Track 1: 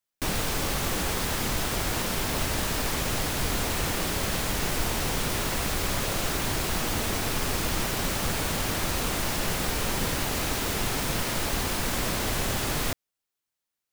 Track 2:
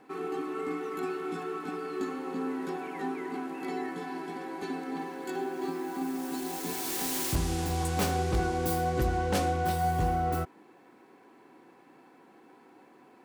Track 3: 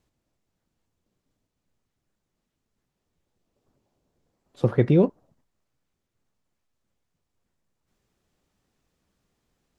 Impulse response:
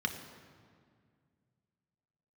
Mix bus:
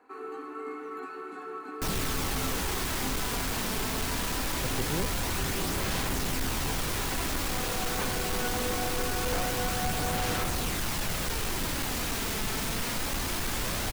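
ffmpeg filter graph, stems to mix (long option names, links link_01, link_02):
-filter_complex "[0:a]equalizer=frequency=560:width=1.5:gain=-3,volume=26dB,asoftclip=hard,volume=-26dB,aphaser=in_gain=1:out_gain=1:delay=4.6:decay=0.23:speed=0.23:type=sinusoidal,adelay=1600,volume=-1.5dB[link_01];[1:a]acrossover=split=3500[link_02][link_03];[link_03]acompressor=threshold=-52dB:ratio=4:attack=1:release=60[link_04];[link_02][link_04]amix=inputs=2:normalize=0,highpass=370,volume=-5dB,asplit=2[link_05][link_06];[link_06]volume=-6dB[link_07];[2:a]volume=-16.5dB[link_08];[3:a]atrim=start_sample=2205[link_09];[link_07][link_09]afir=irnorm=-1:irlink=0[link_10];[link_01][link_05][link_08][link_10]amix=inputs=4:normalize=0"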